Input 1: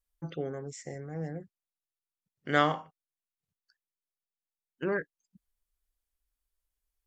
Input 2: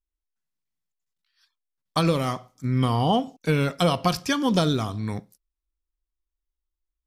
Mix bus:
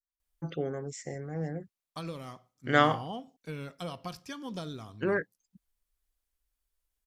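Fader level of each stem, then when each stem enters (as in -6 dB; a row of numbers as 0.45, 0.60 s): +2.0, -17.5 dB; 0.20, 0.00 s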